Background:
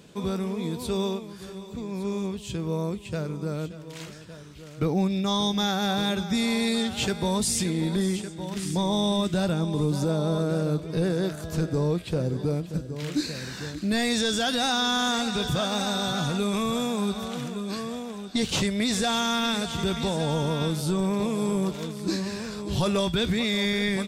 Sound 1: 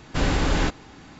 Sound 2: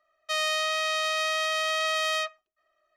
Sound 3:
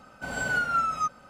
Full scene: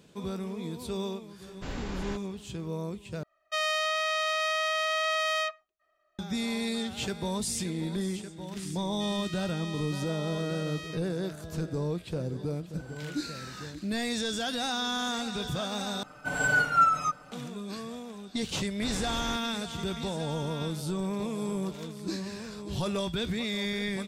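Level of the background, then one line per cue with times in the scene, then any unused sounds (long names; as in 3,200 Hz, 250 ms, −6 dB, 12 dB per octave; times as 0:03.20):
background −6.5 dB
0:01.47: mix in 1 −15 dB
0:03.23: overwrite with 2 + high-shelf EQ 3,600 Hz −6 dB
0:08.71: mix in 2 −14.5 dB + high-pass filter 1,300 Hz
0:12.56: mix in 3 −17 dB + downward compressor, threshold −27 dBFS
0:16.03: overwrite with 3 −1 dB + comb filter 6.7 ms, depth 99%
0:18.67: mix in 1 −15 dB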